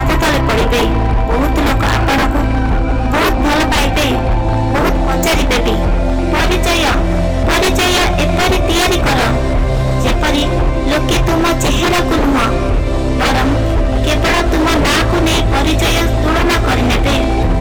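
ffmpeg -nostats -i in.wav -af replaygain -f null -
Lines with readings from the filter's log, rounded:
track_gain = -4.4 dB
track_peak = 0.326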